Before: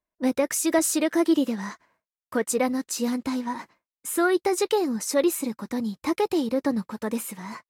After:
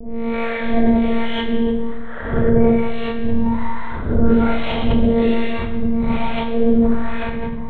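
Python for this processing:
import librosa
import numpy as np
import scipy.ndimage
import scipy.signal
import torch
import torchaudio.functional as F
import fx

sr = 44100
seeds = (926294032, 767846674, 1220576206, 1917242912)

p1 = fx.spec_swells(x, sr, rise_s=0.97)
p2 = fx.rider(p1, sr, range_db=4, speed_s=0.5)
p3 = p1 + F.gain(torch.from_numpy(p2), -2.5).numpy()
p4 = fx.lpc_monotone(p3, sr, seeds[0], pitch_hz=230.0, order=8)
p5 = p4 + fx.echo_single(p4, sr, ms=184, db=-5.5, dry=0)
p6 = fx.harmonic_tremolo(p5, sr, hz=1.2, depth_pct=100, crossover_hz=660.0)
p7 = fx.cheby_harmonics(p6, sr, harmonics=(8,), levels_db=(-43,), full_scale_db=-7.0)
p8 = fx.low_shelf(p7, sr, hz=170.0, db=10.5)
p9 = fx.rev_schroeder(p8, sr, rt60_s=1.1, comb_ms=26, drr_db=-8.0)
p10 = fx.sustainer(p9, sr, db_per_s=31.0)
y = F.gain(torch.from_numpy(p10), -5.0).numpy()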